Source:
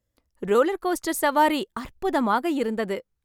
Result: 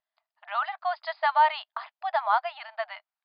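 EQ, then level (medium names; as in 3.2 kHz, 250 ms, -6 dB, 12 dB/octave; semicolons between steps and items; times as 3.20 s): brick-wall FIR band-pass 620–5100 Hz; tilt EQ -2 dB/octave; 0.0 dB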